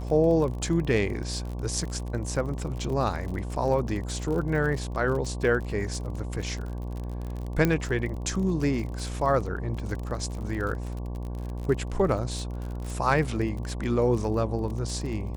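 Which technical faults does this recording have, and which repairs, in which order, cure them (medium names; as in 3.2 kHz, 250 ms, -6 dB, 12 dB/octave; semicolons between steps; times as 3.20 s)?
buzz 60 Hz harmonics 19 -33 dBFS
crackle 43 per s -33 dBFS
7.65 s: pop -10 dBFS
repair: de-click; de-hum 60 Hz, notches 19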